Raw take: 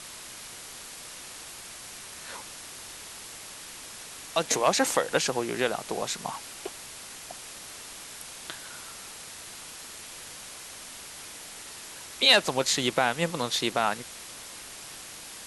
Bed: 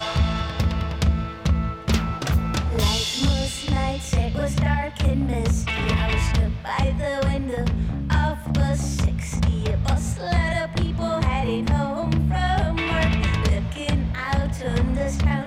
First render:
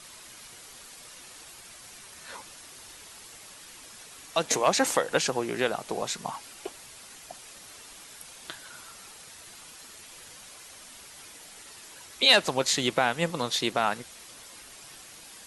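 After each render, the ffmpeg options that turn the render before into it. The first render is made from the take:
-af "afftdn=nr=7:nf=-44"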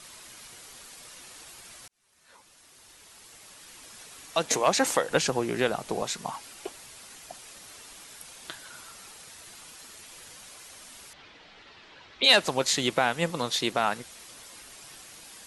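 -filter_complex "[0:a]asettb=1/sr,asplit=3[a][b][c];[a]atrim=end=5.104[d];[b]atrim=start=5.1:end=6.03,asetpts=PTS-STARTPTS,afade=t=in:d=0.004:c=qsin,afade=t=out:st=0.926:d=0.004:c=qsin,lowshelf=f=220:g=6.5[e];[c]atrim=start=6.026[f];[d][e]acrossfade=d=0.004:c1=hsin:c2=qsin[g];[g][f]acrossfade=d=0.004:c1=qsin:c2=hsin,asettb=1/sr,asplit=3[h][i][j];[h]atrim=end=11.134[k];[i]atrim=start=11.13:end=12.24,asetpts=PTS-STARTPTS,afade=t=in:d=0.004:c=qsin,afade=t=out:st=1.106:d=0.004:c=qsin,lowpass=f=4k:w=0.5412,lowpass=f=4k:w=1.3066[l];[j]atrim=start=12.236[m];[k][l]acrossfade=d=0.004:c1=hsin:c2=qsin[n];[n][m]acrossfade=d=0.004:c1=qsin:c2=hsin,asplit=2[o][p];[o]atrim=end=1.88,asetpts=PTS-STARTPTS,afade=t=out:st=1.876:d=0.004:c=hsin[q];[p]atrim=start=1.88,asetpts=PTS-STARTPTS,afade=t=in:d=2.14[r];[q][r]concat=n=2:v=0:a=1"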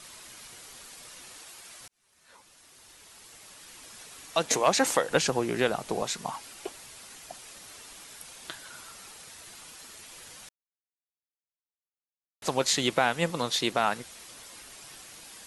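-filter_complex "[0:a]asettb=1/sr,asplit=3[a][b][c];[a]atrim=end=1.384[d];[b]atrim=start=1.38:end=1.81,asetpts=PTS-STARTPTS,afade=t=in:d=0.004:c=qsin,afade=t=out:st=0.426:d=0.004:c=qsin,lowshelf=f=190:g=-10[e];[c]atrim=start=1.806[f];[d][e]acrossfade=d=0.004:c1=hsin:c2=qsin[g];[g][f]acrossfade=d=0.004:c1=qsin:c2=hsin,asplit=3[h][i][j];[h]atrim=end=10.49,asetpts=PTS-STARTPTS,afade=t=out:st=10.486:d=0.004:c=hsin[k];[i]atrim=start=10.49:end=12.42,asetpts=PTS-STARTPTS,volume=0[l];[j]atrim=start=12.42,asetpts=PTS-STARTPTS,afade=t=in:d=0.004:c=hsin[m];[k][l][m]concat=n=3:v=0:a=1"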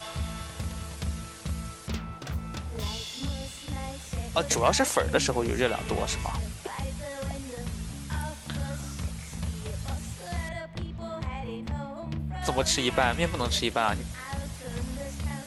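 -filter_complex "[1:a]volume=-12.5dB[a];[0:a][a]amix=inputs=2:normalize=0"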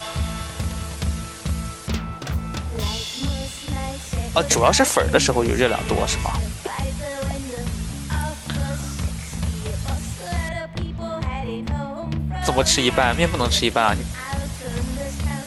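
-af "volume=8dB,alimiter=limit=-3dB:level=0:latency=1"

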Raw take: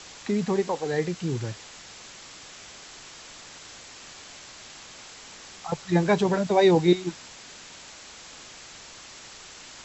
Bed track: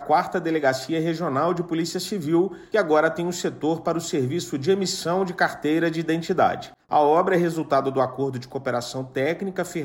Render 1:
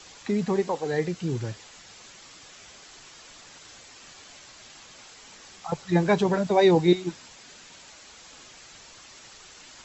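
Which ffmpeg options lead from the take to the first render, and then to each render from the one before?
-af "afftdn=nr=6:nf=-46"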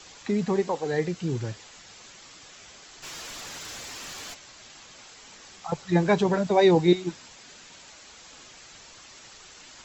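-filter_complex "[0:a]asplit=3[a][b][c];[a]afade=t=out:st=3.02:d=0.02[d];[b]aeval=exprs='0.0168*sin(PI/2*2.51*val(0)/0.0168)':c=same,afade=t=in:st=3.02:d=0.02,afade=t=out:st=4.33:d=0.02[e];[c]afade=t=in:st=4.33:d=0.02[f];[d][e][f]amix=inputs=3:normalize=0"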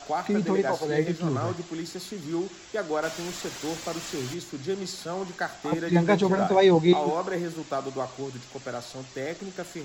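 -filter_complex "[1:a]volume=-9.5dB[a];[0:a][a]amix=inputs=2:normalize=0"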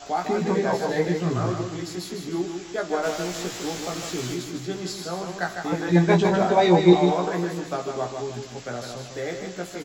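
-filter_complex "[0:a]asplit=2[a][b];[b]adelay=17,volume=-3dB[c];[a][c]amix=inputs=2:normalize=0,asplit=2[d][e];[e]aecho=0:1:154|308|462|616:0.501|0.185|0.0686|0.0254[f];[d][f]amix=inputs=2:normalize=0"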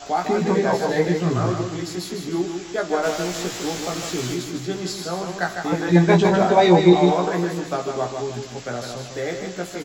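-af "volume=3.5dB,alimiter=limit=-3dB:level=0:latency=1"

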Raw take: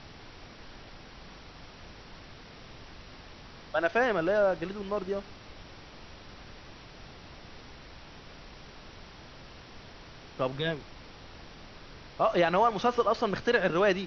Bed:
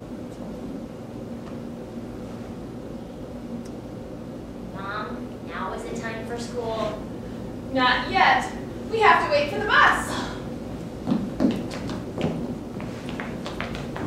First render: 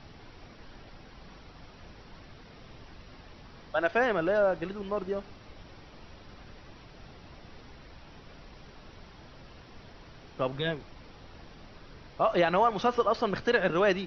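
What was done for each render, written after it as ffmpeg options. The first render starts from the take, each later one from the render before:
-af "afftdn=nr=6:nf=-50"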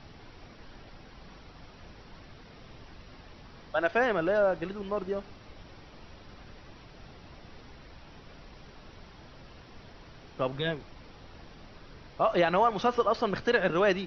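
-af anull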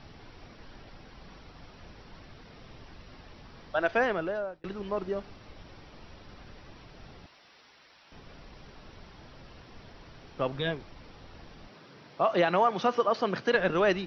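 -filter_complex "[0:a]asettb=1/sr,asplit=3[a][b][c];[a]atrim=end=7.264[d];[b]atrim=start=7.26:end=8.12,asetpts=PTS-STARTPTS,afade=t=in:d=0.004:c=qsin,afade=t=out:st=0.856:d=0.004:c=qsin,highpass=f=1.5k:p=1[e];[c]atrim=start=8.116[f];[d][e]acrossfade=d=0.004:c1=hsin:c2=qsin[g];[g][f]acrossfade=d=0.004:c1=qsin:c2=hsin,asettb=1/sr,asplit=3[h][i][j];[h]atrim=end=11.684[k];[i]atrim=start=11.68:end=13.55,asetpts=PTS-STARTPTS,afade=t=in:d=0.004:c=qsin,afade=t=out:st=1.866:d=0.004:c=qsin,highpass=f=130:w=0.5412,highpass=f=130:w=1.3066[l];[j]atrim=start=13.546[m];[k][l]acrossfade=d=0.004:c1=hsin:c2=qsin[n];[n][m]acrossfade=d=0.004:c1=qsin:c2=hsin,asplit=2[o][p];[o]atrim=end=4.64,asetpts=PTS-STARTPTS,afade=t=out:st=4.01:d=0.63[q];[p]atrim=start=4.64,asetpts=PTS-STARTPTS,afade=t=in:d=0.004:c=hsin[r];[q][r]concat=n=2:v=0:a=1"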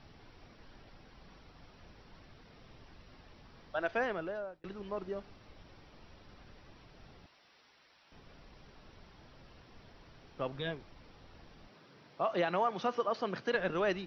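-af "volume=-7dB"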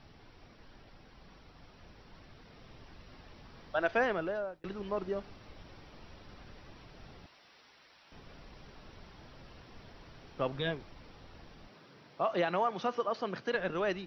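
-af "dynaudnorm=f=470:g=11:m=4dB"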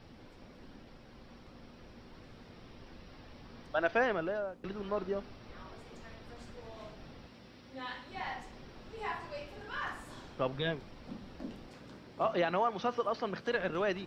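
-filter_complex "[1:a]volume=-22.5dB[a];[0:a][a]amix=inputs=2:normalize=0"

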